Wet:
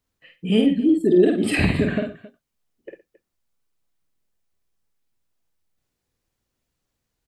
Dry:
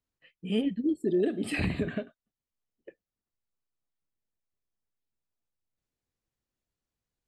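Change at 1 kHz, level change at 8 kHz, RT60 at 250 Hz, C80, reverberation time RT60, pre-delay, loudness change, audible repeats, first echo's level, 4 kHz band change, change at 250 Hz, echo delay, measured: +10.5 dB, +10.5 dB, no reverb, no reverb, no reverb, no reverb, +10.5 dB, 3, -4.5 dB, +10.5 dB, +11.0 dB, 50 ms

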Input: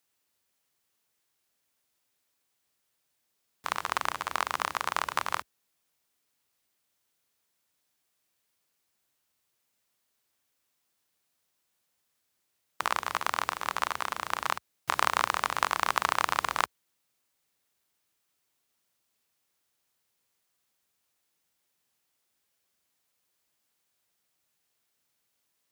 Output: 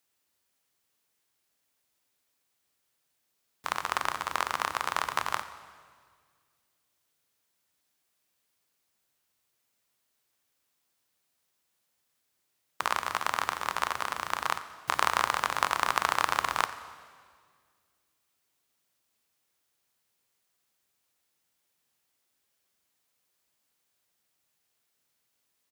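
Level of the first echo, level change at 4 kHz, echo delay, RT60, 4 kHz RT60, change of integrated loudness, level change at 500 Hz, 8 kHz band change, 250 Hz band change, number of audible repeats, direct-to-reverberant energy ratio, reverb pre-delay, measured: -18.5 dB, +0.5 dB, 89 ms, 1.9 s, 1.8 s, +0.5 dB, +0.5 dB, +0.5 dB, +0.5 dB, 2, 11.0 dB, 7 ms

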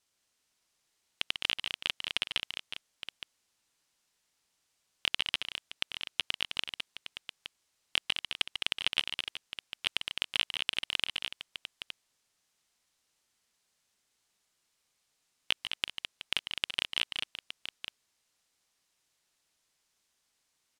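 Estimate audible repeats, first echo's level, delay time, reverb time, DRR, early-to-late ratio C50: 4, -9.5 dB, 144 ms, no reverb, no reverb, no reverb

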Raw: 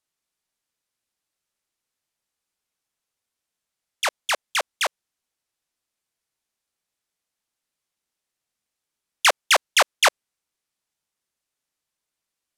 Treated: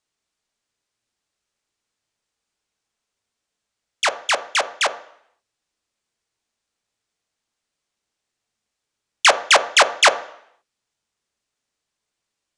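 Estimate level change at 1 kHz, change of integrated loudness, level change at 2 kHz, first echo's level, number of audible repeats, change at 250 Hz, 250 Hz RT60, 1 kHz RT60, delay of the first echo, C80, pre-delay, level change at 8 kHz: +4.5 dB, +4.0 dB, +4.0 dB, no echo, no echo, +5.5 dB, 0.70 s, 0.70 s, no echo, 17.5 dB, 3 ms, +3.0 dB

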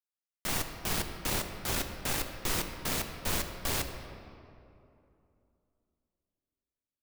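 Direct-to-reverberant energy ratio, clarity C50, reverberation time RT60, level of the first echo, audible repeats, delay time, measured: 5.5 dB, 7.0 dB, 2.8 s, no echo, no echo, no echo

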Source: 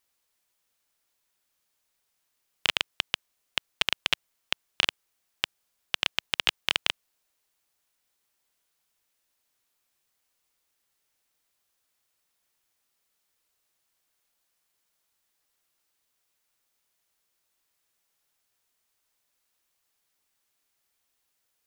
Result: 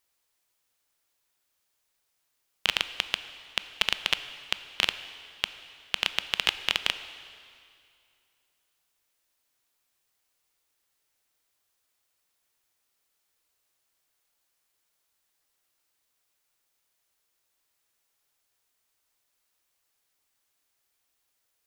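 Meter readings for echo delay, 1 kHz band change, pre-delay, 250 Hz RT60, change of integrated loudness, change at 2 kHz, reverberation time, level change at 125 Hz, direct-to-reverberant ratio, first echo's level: no echo, +0.5 dB, 7 ms, 2.4 s, 0.0 dB, +0.5 dB, 2.4 s, 0.0 dB, 11.5 dB, no echo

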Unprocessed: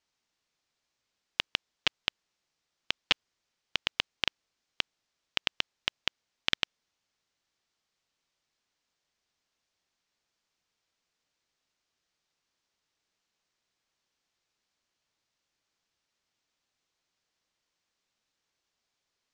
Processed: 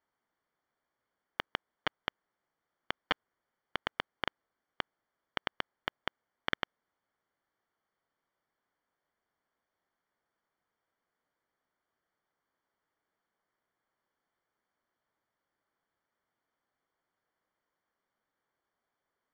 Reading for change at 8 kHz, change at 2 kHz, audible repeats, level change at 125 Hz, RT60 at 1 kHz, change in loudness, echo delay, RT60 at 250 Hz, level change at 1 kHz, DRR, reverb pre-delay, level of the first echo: under -15 dB, -4.0 dB, no echo, -1.5 dB, no reverb, -7.0 dB, no echo, no reverb, +3.0 dB, no reverb, no reverb, no echo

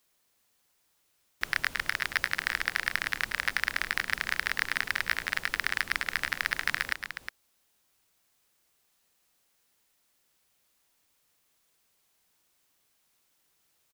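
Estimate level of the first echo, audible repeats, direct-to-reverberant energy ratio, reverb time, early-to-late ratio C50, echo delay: -14.0 dB, 2, no reverb, no reverb, no reverb, 105 ms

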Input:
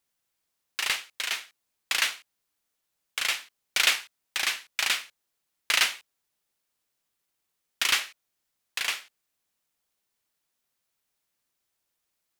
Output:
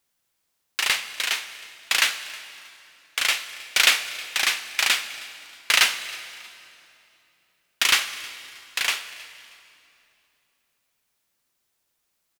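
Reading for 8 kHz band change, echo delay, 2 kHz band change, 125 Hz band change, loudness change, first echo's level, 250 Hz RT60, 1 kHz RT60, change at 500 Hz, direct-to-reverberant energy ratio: +5.5 dB, 316 ms, +5.5 dB, no reading, +5.0 dB, -22.0 dB, 3.6 s, 2.7 s, +5.5 dB, 11.0 dB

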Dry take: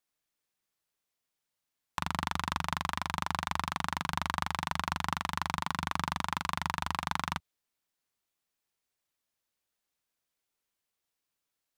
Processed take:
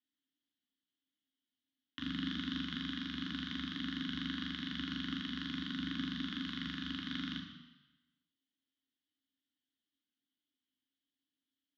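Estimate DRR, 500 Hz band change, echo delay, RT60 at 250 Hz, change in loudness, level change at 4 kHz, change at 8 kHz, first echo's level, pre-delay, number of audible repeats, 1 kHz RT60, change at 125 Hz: 2.0 dB, -14.5 dB, no echo, 1.0 s, -5.5 dB, -0.5 dB, under -20 dB, no echo, 3 ms, no echo, 1.1 s, -7.0 dB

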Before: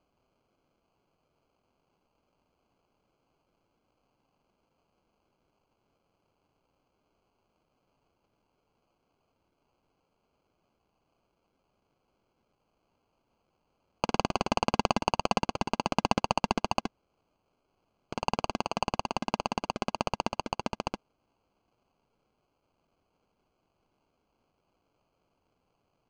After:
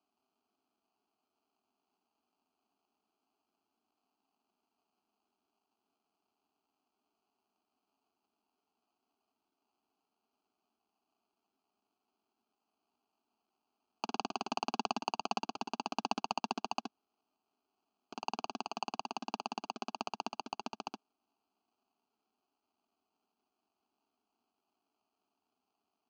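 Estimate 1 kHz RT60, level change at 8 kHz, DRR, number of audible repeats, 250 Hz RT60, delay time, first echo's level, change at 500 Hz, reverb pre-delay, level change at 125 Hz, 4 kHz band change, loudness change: no reverb, -7.0 dB, no reverb, no echo, no reverb, no echo, no echo, -12.0 dB, no reverb, -19.0 dB, -6.5 dB, -8.5 dB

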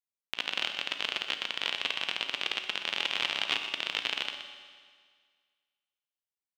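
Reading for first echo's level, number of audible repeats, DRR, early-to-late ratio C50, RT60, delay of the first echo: -10.5 dB, 1, 5.0 dB, 6.0 dB, 1.8 s, 123 ms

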